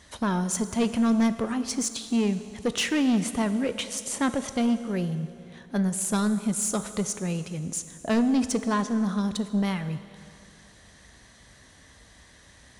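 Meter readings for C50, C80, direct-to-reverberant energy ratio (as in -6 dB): 12.0 dB, 12.5 dB, 11.0 dB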